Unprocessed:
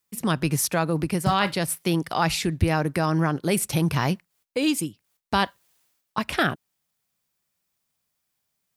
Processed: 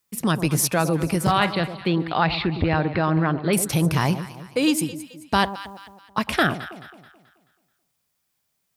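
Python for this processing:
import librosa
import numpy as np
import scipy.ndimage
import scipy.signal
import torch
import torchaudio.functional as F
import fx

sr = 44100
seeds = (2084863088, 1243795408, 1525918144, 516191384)

y = fx.ellip_lowpass(x, sr, hz=4200.0, order=4, stop_db=40, at=(1.31, 3.53))
y = fx.echo_alternate(y, sr, ms=108, hz=940.0, feedback_pct=63, wet_db=-11.0)
y = fx.transformer_sat(y, sr, knee_hz=370.0)
y = F.gain(torch.from_numpy(y), 3.0).numpy()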